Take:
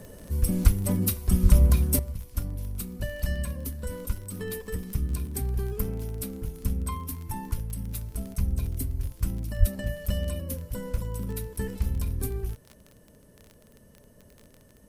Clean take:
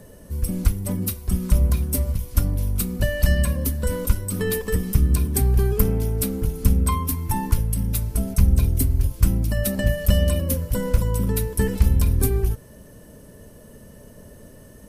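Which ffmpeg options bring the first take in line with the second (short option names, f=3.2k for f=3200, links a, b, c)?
-filter_complex "[0:a]adeclick=t=4,asplit=3[a][b][c];[a]afade=t=out:st=1.42:d=0.02[d];[b]highpass=f=140:w=0.5412,highpass=f=140:w=1.3066,afade=t=in:st=1.42:d=0.02,afade=t=out:st=1.54:d=0.02[e];[c]afade=t=in:st=1.54:d=0.02[f];[d][e][f]amix=inputs=3:normalize=0,asplit=3[g][h][i];[g]afade=t=out:st=9.59:d=0.02[j];[h]highpass=f=140:w=0.5412,highpass=f=140:w=1.3066,afade=t=in:st=9.59:d=0.02,afade=t=out:st=9.71:d=0.02[k];[i]afade=t=in:st=9.71:d=0.02[l];[j][k][l]amix=inputs=3:normalize=0,asetnsamples=n=441:p=0,asendcmd='1.99 volume volume 10.5dB',volume=0dB"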